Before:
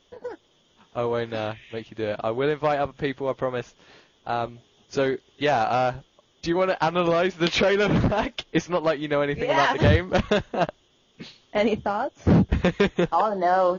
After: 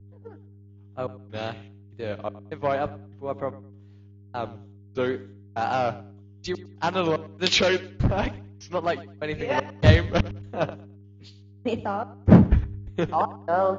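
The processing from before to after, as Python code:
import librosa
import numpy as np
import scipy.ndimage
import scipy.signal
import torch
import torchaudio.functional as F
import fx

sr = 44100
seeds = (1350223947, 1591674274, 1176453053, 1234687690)

p1 = fx.level_steps(x, sr, step_db=15)
p2 = x + F.gain(torch.from_numpy(p1), 0.0).numpy()
p3 = fx.wow_flutter(p2, sr, seeds[0], rate_hz=2.1, depth_cents=120.0)
p4 = fx.step_gate(p3, sr, bpm=197, pattern='.xxxxx..', floor_db=-60.0, edge_ms=4.5)
p5 = fx.dmg_buzz(p4, sr, base_hz=100.0, harmonics=4, level_db=-33.0, tilt_db=-4, odd_only=False)
p6 = p5 + fx.echo_feedback(p5, sr, ms=106, feedback_pct=35, wet_db=-16, dry=0)
p7 = fx.band_widen(p6, sr, depth_pct=100)
y = F.gain(torch.from_numpy(p7), -6.0).numpy()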